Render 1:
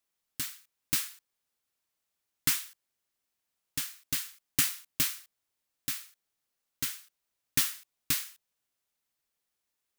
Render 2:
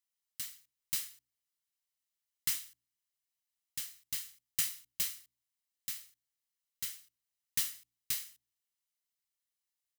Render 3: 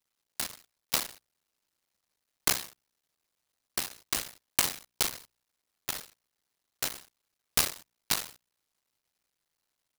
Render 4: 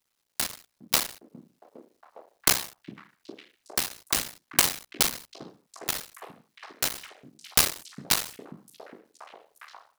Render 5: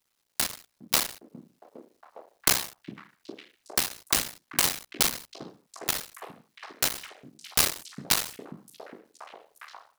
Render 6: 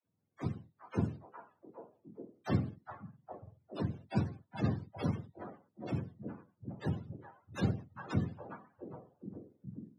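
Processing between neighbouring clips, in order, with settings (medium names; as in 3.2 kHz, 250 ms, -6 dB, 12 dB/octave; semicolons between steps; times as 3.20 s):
amplifier tone stack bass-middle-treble 5-5-5; comb 1 ms, depth 31%; de-hum 60.17 Hz, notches 9
cycle switcher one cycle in 2, muted; high-order bell 5.3 kHz +9.5 dB 1.1 oct; delay time shaken by noise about 4.7 kHz, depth 0.042 ms; trim +6.5 dB
repeats whose band climbs or falls 408 ms, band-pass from 210 Hz, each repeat 0.7 oct, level -4 dB; trim +5 dB
loudness maximiser +7 dB; trim -5.5 dB
spectrum inverted on a logarithmic axis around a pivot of 480 Hz; band-pass 160–4900 Hz; phase dispersion lows, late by 59 ms, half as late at 340 Hz; trim +1 dB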